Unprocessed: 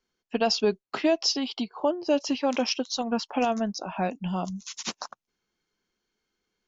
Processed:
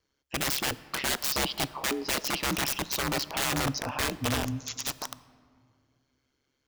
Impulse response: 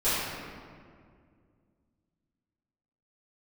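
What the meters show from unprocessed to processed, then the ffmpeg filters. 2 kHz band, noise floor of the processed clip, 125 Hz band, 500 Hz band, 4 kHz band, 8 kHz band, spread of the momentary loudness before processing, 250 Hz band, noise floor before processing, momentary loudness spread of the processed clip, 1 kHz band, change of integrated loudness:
+5.5 dB, -78 dBFS, +3.5 dB, -9.5 dB, 0.0 dB, no reading, 11 LU, -7.0 dB, -82 dBFS, 6 LU, -3.0 dB, -1.5 dB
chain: -filter_complex "[0:a]aeval=exprs='(mod(18.8*val(0)+1,2)-1)/18.8':c=same,aeval=exprs='val(0)*sin(2*PI*68*n/s)':c=same,asplit=2[s0][s1];[1:a]atrim=start_sample=2205,adelay=16[s2];[s1][s2]afir=irnorm=-1:irlink=0,volume=0.0316[s3];[s0][s3]amix=inputs=2:normalize=0,volume=1.78"

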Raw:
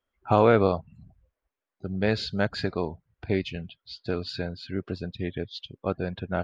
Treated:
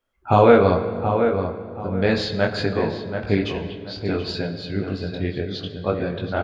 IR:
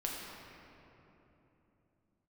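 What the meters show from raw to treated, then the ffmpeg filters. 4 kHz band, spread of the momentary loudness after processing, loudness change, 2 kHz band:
+5.5 dB, 13 LU, +6.0 dB, +6.0 dB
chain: -filter_complex "[0:a]flanger=delay=18.5:depth=3.7:speed=0.66,asplit=2[s0][s1];[s1]adelay=730,lowpass=f=2300:p=1,volume=0.447,asplit=2[s2][s3];[s3]adelay=730,lowpass=f=2300:p=1,volume=0.29,asplit=2[s4][s5];[s5]adelay=730,lowpass=f=2300:p=1,volume=0.29,asplit=2[s6][s7];[s7]adelay=730,lowpass=f=2300:p=1,volume=0.29[s8];[s0][s2][s4][s6][s8]amix=inputs=5:normalize=0,asplit=2[s9][s10];[1:a]atrim=start_sample=2205,asetrate=74970,aresample=44100[s11];[s10][s11]afir=irnorm=-1:irlink=0,volume=0.708[s12];[s9][s12]amix=inputs=2:normalize=0,volume=1.88"

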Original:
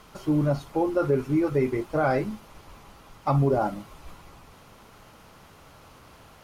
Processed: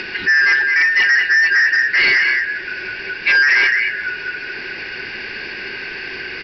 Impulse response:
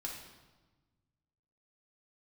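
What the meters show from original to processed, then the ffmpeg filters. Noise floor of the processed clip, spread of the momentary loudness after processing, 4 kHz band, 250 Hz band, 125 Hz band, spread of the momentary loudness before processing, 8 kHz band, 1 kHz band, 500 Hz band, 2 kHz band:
-29 dBFS, 15 LU, +26.5 dB, -12.5 dB, under -15 dB, 10 LU, no reading, -2.0 dB, -9.5 dB, +30.0 dB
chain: -filter_complex "[0:a]afftfilt=real='real(if(lt(b,272),68*(eq(floor(b/68),0)*2+eq(floor(b/68),1)*0+eq(floor(b/68),2)*3+eq(floor(b/68),3)*1)+mod(b,68),b),0)':imag='imag(if(lt(b,272),68*(eq(floor(b/68),0)*2+eq(floor(b/68),1)*0+eq(floor(b/68),2)*3+eq(floor(b/68),3)*1)+mod(b,68),b),0)':win_size=2048:overlap=0.75,asplit=2[s0][s1];[s1]adelay=214,lowpass=f=1800:p=1,volume=0.668,asplit=2[s2][s3];[s3]adelay=214,lowpass=f=1800:p=1,volume=0.16,asplit=2[s4][s5];[s5]adelay=214,lowpass=f=1800:p=1,volume=0.16[s6];[s0][s2][s4][s6]amix=inputs=4:normalize=0,asplit=2[s7][s8];[s8]acompressor=mode=upward:threshold=0.0398:ratio=2.5,volume=1.41[s9];[s7][s9]amix=inputs=2:normalize=0,agate=range=0.00316:threshold=0.00708:ratio=16:detection=peak,acontrast=74,aresample=11025,asoftclip=type=tanh:threshold=0.335,aresample=44100,equalizer=f=380:w=4.2:g=15"

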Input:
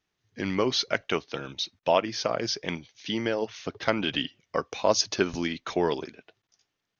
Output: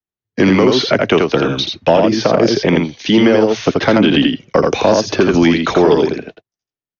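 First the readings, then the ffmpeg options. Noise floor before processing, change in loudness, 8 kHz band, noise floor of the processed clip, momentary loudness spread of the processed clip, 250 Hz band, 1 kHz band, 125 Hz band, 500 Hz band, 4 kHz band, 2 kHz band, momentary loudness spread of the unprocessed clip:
-82 dBFS, +15.0 dB, no reading, under -85 dBFS, 5 LU, +19.5 dB, +12.5 dB, +18.0 dB, +15.5 dB, +10.5 dB, +13.0 dB, 10 LU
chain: -filter_complex "[0:a]agate=range=0.0141:threshold=0.00251:ratio=16:detection=peak,tiltshelf=f=970:g=4.5,acrossover=split=180|470|3600[s0][s1][s2][s3];[s0]acompressor=threshold=0.00447:ratio=4[s4];[s1]acompressor=threshold=0.0355:ratio=4[s5];[s2]acompressor=threshold=0.0178:ratio=4[s6];[s3]acompressor=threshold=0.00316:ratio=4[s7];[s4][s5][s6][s7]amix=inputs=4:normalize=0,acrossover=split=260|700|1200[s8][s9][s10][s11];[s9]volume=25.1,asoftclip=hard,volume=0.0398[s12];[s8][s12][s10][s11]amix=inputs=4:normalize=0,aecho=1:1:83:0.631,aresample=16000,aresample=44100,alimiter=level_in=11.2:limit=0.891:release=50:level=0:latency=1,volume=0.891"

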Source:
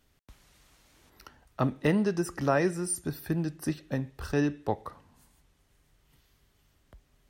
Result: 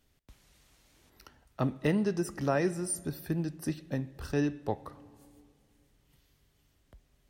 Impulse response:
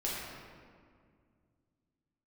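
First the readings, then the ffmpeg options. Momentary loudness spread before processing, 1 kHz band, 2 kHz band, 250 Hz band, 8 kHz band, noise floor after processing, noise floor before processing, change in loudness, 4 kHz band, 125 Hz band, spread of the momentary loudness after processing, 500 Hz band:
9 LU, -4.5 dB, -4.0 dB, -2.0 dB, -2.0 dB, -70 dBFS, -69 dBFS, -2.5 dB, -2.5 dB, -2.0 dB, 9 LU, -2.5 dB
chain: -filter_complex "[0:a]equalizer=f=1200:w=1.1:g=-3.5,asplit=2[s0][s1];[1:a]atrim=start_sample=2205,asetrate=37926,aresample=44100[s2];[s1][s2]afir=irnorm=-1:irlink=0,volume=0.0562[s3];[s0][s3]amix=inputs=2:normalize=0,volume=0.75"

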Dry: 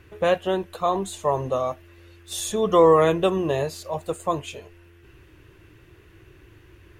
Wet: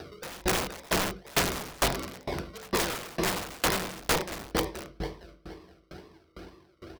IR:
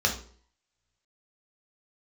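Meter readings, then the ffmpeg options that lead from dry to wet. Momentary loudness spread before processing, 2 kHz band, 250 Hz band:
15 LU, +3.5 dB, -6.5 dB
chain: -filter_complex "[0:a]highpass=190,aresample=8000,aresample=44100,equalizer=f=250:t=o:w=0.44:g=13,acrossover=split=1400[s0][s1];[s0]acrusher=bits=2:mode=log:mix=0:aa=0.000001[s2];[s2][s1]amix=inputs=2:normalize=0,aecho=1:1:468|936|1404:0.422|0.118|0.0331,acrusher=samples=41:mix=1:aa=0.000001:lfo=1:lforange=24.6:lforate=2.1[s3];[1:a]atrim=start_sample=2205,asetrate=36603,aresample=44100[s4];[s3][s4]afir=irnorm=-1:irlink=0,areverse,acompressor=threshold=0.224:ratio=8,areverse,aeval=exprs='(mod(3.76*val(0)+1,2)-1)/3.76':c=same,acompressor=mode=upward:threshold=0.0224:ratio=2.5,aeval=exprs='val(0)*pow(10,-29*if(lt(mod(2.2*n/s,1),2*abs(2.2)/1000),1-mod(2.2*n/s,1)/(2*abs(2.2)/1000),(mod(2.2*n/s,1)-2*abs(2.2)/1000)/(1-2*abs(2.2)/1000))/20)':c=same,volume=0.631"

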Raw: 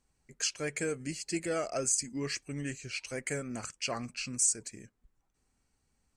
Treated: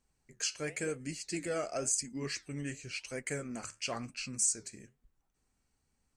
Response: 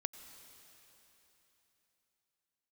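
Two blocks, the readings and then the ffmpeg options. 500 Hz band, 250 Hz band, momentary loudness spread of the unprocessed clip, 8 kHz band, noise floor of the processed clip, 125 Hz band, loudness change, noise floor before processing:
-2.5 dB, -2.5 dB, 11 LU, -2.5 dB, -80 dBFS, -2.0 dB, -2.5 dB, -78 dBFS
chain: -af "flanger=delay=4.5:depth=9.7:regen=-73:speed=0.95:shape=sinusoidal,volume=1.26"

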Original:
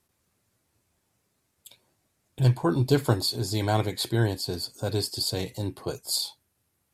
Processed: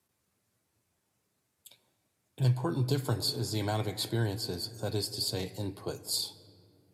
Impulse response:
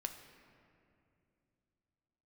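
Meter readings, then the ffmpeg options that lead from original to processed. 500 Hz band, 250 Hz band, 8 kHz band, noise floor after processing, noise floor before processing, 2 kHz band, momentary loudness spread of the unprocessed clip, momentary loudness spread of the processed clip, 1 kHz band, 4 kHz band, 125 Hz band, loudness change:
-7.0 dB, -6.5 dB, -4.0 dB, -79 dBFS, -75 dBFS, -7.0 dB, 10 LU, 8 LU, -7.5 dB, -4.0 dB, -5.5 dB, -5.5 dB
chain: -filter_complex "[0:a]asplit=2[s0][s1];[1:a]atrim=start_sample=2205[s2];[s1][s2]afir=irnorm=-1:irlink=0,volume=0.841[s3];[s0][s3]amix=inputs=2:normalize=0,acrossover=split=130|3000[s4][s5][s6];[s5]acompressor=threshold=0.1:ratio=6[s7];[s4][s7][s6]amix=inputs=3:normalize=0,highpass=75,volume=0.376"

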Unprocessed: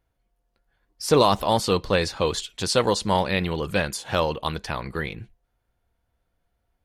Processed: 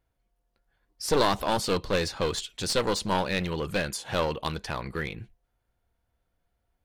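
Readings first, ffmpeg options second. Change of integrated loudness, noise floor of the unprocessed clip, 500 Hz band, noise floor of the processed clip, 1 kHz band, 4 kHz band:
-4.5 dB, -76 dBFS, -5.0 dB, -78 dBFS, -5.0 dB, -3.5 dB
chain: -af "aeval=exprs='clip(val(0),-1,0.0668)':c=same,volume=0.75"

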